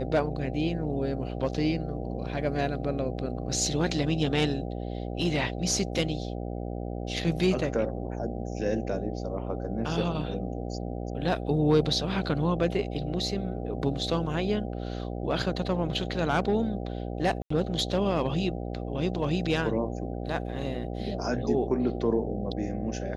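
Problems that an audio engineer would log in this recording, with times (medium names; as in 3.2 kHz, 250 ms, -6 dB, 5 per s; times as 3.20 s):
buzz 60 Hz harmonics 13 -34 dBFS
17.42–17.50 s: dropout 84 ms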